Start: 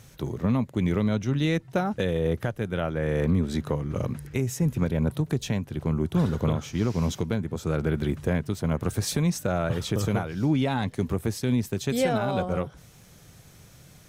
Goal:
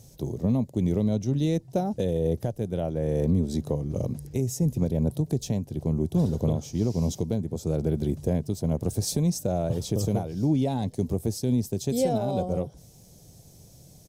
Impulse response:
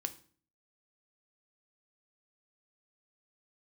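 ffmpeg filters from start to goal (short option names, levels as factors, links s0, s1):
-af "firequalizer=gain_entry='entry(690,0);entry(1300,-19);entry(5000,1)':delay=0.05:min_phase=1"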